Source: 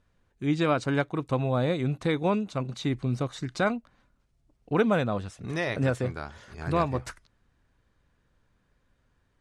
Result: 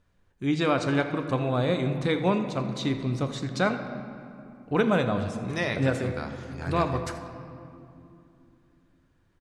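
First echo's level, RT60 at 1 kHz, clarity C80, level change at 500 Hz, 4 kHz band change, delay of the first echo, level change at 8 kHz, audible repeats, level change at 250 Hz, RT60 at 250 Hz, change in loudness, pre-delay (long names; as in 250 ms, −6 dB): −16.5 dB, 2.6 s, 9.0 dB, +1.0 dB, +3.5 dB, 82 ms, +2.0 dB, 1, +1.5 dB, 4.0 s, +1.0 dB, 9 ms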